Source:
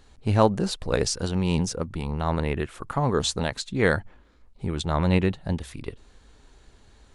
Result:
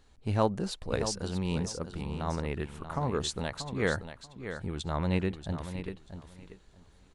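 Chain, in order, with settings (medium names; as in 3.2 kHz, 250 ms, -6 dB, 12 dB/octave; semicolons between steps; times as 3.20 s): feedback delay 635 ms, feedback 19%, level -10 dB; trim -7.5 dB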